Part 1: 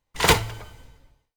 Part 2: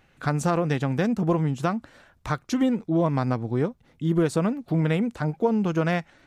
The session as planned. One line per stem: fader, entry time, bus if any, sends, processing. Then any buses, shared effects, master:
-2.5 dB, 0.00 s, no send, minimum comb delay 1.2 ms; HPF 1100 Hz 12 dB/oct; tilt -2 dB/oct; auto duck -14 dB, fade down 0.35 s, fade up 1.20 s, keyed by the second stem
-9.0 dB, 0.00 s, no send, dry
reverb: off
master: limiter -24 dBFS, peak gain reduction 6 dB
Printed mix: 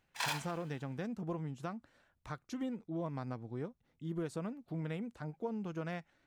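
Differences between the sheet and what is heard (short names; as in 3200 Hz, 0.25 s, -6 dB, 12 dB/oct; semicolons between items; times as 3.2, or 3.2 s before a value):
stem 1 -2.5 dB -> +4.5 dB; stem 2 -9.0 dB -> -16.5 dB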